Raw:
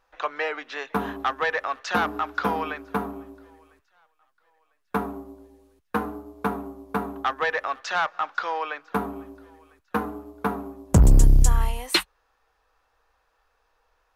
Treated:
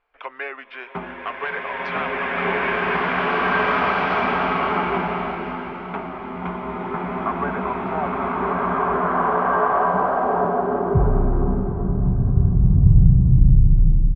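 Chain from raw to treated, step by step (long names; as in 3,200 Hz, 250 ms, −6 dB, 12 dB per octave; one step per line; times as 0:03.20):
low-pass filter sweep 2,800 Hz → 160 Hz, 0:06.42–0:10.25
pitch shifter −2 semitones
slow-attack reverb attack 2,290 ms, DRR −11.5 dB
level −6 dB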